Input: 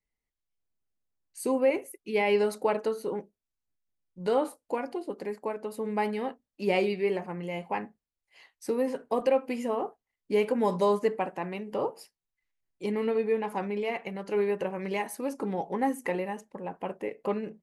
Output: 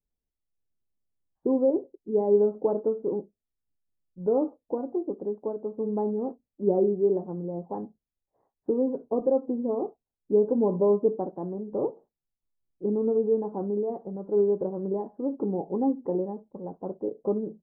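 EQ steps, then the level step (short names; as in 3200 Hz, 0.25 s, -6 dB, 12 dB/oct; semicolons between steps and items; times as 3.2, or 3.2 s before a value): Gaussian blur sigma 11 samples; dynamic EQ 340 Hz, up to +6 dB, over -43 dBFS, Q 1.6; air absorption 300 m; +2.5 dB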